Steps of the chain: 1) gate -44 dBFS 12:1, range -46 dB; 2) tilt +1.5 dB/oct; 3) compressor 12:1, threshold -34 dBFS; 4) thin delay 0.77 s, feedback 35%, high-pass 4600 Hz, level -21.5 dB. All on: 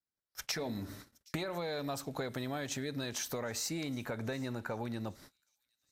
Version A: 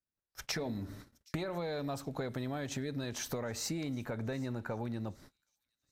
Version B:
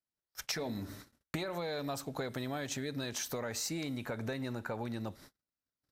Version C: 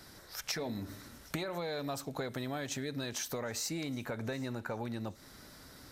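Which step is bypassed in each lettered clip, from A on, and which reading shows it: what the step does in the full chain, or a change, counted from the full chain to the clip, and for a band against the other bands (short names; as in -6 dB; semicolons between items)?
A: 2, 125 Hz band +4.0 dB; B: 4, echo-to-direct -36.5 dB to none; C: 1, momentary loudness spread change +4 LU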